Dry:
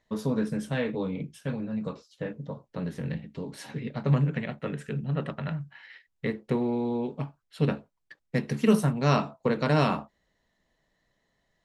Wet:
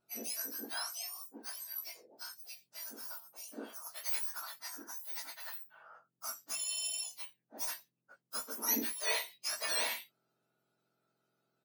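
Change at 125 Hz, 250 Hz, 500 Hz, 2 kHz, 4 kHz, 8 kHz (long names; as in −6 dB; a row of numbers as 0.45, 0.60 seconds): below −40 dB, −22.5 dB, −19.5 dB, −5.5 dB, +2.5 dB, +11.5 dB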